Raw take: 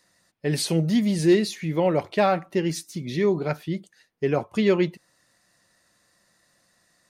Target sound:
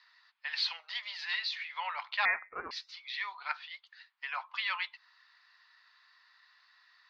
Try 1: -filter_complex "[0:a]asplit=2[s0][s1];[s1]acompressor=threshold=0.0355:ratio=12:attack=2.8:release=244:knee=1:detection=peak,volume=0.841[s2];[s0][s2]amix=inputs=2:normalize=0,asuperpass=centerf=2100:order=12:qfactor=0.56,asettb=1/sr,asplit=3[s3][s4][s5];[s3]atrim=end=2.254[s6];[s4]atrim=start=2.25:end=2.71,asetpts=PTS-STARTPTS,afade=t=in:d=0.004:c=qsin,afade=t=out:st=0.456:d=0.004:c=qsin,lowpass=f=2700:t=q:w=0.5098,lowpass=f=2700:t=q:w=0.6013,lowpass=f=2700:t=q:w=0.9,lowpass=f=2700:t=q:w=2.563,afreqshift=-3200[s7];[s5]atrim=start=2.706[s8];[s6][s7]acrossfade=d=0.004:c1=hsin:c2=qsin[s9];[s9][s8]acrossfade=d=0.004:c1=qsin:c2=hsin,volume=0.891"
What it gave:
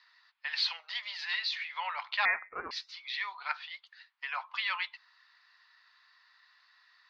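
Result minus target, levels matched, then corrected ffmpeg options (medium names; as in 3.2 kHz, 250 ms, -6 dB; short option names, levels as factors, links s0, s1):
compression: peak gain reduction -10.5 dB
-filter_complex "[0:a]asplit=2[s0][s1];[s1]acompressor=threshold=0.00944:ratio=12:attack=2.8:release=244:knee=1:detection=peak,volume=0.841[s2];[s0][s2]amix=inputs=2:normalize=0,asuperpass=centerf=2100:order=12:qfactor=0.56,asettb=1/sr,asplit=3[s3][s4][s5];[s3]atrim=end=2.254[s6];[s4]atrim=start=2.25:end=2.71,asetpts=PTS-STARTPTS,afade=t=in:d=0.004:c=qsin,afade=t=out:st=0.456:d=0.004:c=qsin,lowpass=f=2700:t=q:w=0.5098,lowpass=f=2700:t=q:w=0.6013,lowpass=f=2700:t=q:w=0.9,lowpass=f=2700:t=q:w=2.563,afreqshift=-3200[s7];[s5]atrim=start=2.706[s8];[s6][s7]acrossfade=d=0.004:c1=hsin:c2=qsin[s9];[s9][s8]acrossfade=d=0.004:c1=qsin:c2=hsin,volume=0.891"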